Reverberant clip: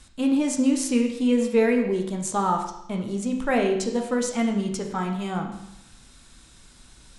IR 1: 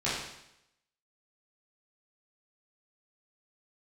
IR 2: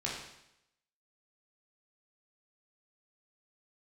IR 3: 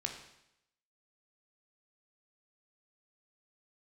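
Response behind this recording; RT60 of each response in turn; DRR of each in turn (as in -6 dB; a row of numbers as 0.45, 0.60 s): 3; 0.80, 0.80, 0.80 s; -11.0, -5.0, 2.5 dB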